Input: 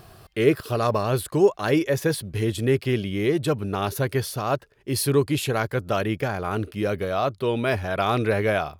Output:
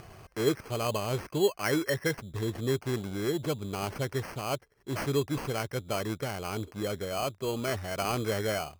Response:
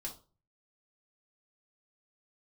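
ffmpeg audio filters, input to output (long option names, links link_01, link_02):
-filter_complex "[0:a]acompressor=mode=upward:threshold=-33dB:ratio=2.5,asettb=1/sr,asplit=3[link_01][link_02][link_03];[link_01]atrim=end=1.504[link_04];[link_02]atrim=start=1.5:end=2.18,asetpts=PTS-STARTPTS,afade=type=in:duration=0.004:curve=qsin,afade=type=out:start_time=0.676:duration=0.004:curve=qsin,lowpass=frequency=1800:width_type=q:width=2.6[link_05];[link_03]atrim=start=2.176[link_06];[link_04][link_05]acrossfade=duration=0.004:curve1=hsin:curve2=qsin[link_07];[link_07][link_06]acrossfade=duration=0.004:curve1=qsin:curve2=hsin,acrusher=samples=12:mix=1:aa=0.000001,volume=-8dB"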